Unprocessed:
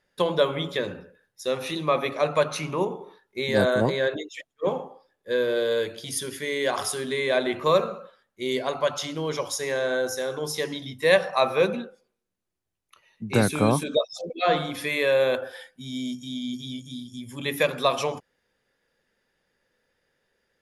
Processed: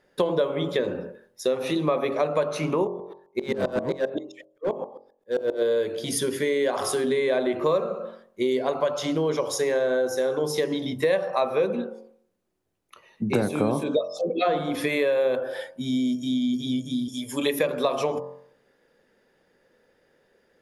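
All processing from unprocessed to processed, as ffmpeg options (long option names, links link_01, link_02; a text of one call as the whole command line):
ffmpeg -i in.wav -filter_complex "[0:a]asettb=1/sr,asplit=3[link_01][link_02][link_03];[link_01]atrim=end=2.874[link_04];[link_02]atrim=start=2.87:end=5.62,asetpts=PTS-STARTPTS,afade=type=in:duration=0.004:curve=qsin,afade=type=out:start_time=2.746:duration=0.004:curve=qsin,asoftclip=type=hard:threshold=-20.5dB,aeval=exprs='val(0)*pow(10,-32*if(lt(mod(-7.6*n/s,1),2*abs(-7.6)/1000),1-mod(-7.6*n/s,1)/(2*abs(-7.6)/1000),(mod(-7.6*n/s,1)-2*abs(-7.6)/1000)/(1-2*abs(-7.6)/1000))/20)':channel_layout=same[link_05];[link_03]atrim=start=5.616[link_06];[link_04][link_05]acrossfade=duration=0.004:curve1=hsin:curve2=qsin[link_07];[link_07][link_06]acrossfade=duration=0.004:curve1=qsin:curve2=hsin,asettb=1/sr,asplit=3[link_08][link_09][link_10];[link_08]atrim=end=17.084[link_11];[link_09]atrim=start=17.08:end=17.59,asetpts=PTS-STARTPTS,afade=type=in:duration=0.004:curve=qsin,afade=type=out:start_time=0.506:duration=0.004:curve=qsin,bass=frequency=250:gain=-14,treble=frequency=4000:gain=6,aecho=1:1:6.8:0.85,atrim=end_sample=22491[link_12];[link_10]atrim=start=17.586[link_13];[link_11][link_12]acrossfade=duration=0.004:curve1=hsin:curve2=qsin[link_14];[link_14][link_13]acrossfade=duration=0.004:curve1=qsin:curve2=hsin,equalizer=frequency=390:width_type=o:width=3:gain=11,bandreject=frequency=45.01:width_type=h:width=4,bandreject=frequency=90.02:width_type=h:width=4,bandreject=frequency=135.03:width_type=h:width=4,bandreject=frequency=180.04:width_type=h:width=4,bandreject=frequency=225.05:width_type=h:width=4,bandreject=frequency=270.06:width_type=h:width=4,bandreject=frequency=315.07:width_type=h:width=4,bandreject=frequency=360.08:width_type=h:width=4,bandreject=frequency=405.09:width_type=h:width=4,bandreject=frequency=450.1:width_type=h:width=4,bandreject=frequency=495.11:width_type=h:width=4,bandreject=frequency=540.12:width_type=h:width=4,bandreject=frequency=585.13:width_type=h:width=4,bandreject=frequency=630.14:width_type=h:width=4,bandreject=frequency=675.15:width_type=h:width=4,bandreject=frequency=720.16:width_type=h:width=4,bandreject=frequency=765.17:width_type=h:width=4,bandreject=frequency=810.18:width_type=h:width=4,bandreject=frequency=855.19:width_type=h:width=4,bandreject=frequency=900.2:width_type=h:width=4,bandreject=frequency=945.21:width_type=h:width=4,bandreject=frequency=990.22:width_type=h:width=4,bandreject=frequency=1035.23:width_type=h:width=4,bandreject=frequency=1080.24:width_type=h:width=4,bandreject=frequency=1125.25:width_type=h:width=4,bandreject=frequency=1170.26:width_type=h:width=4,bandreject=frequency=1215.27:width_type=h:width=4,acompressor=threshold=-25dB:ratio=4,volume=2.5dB" out.wav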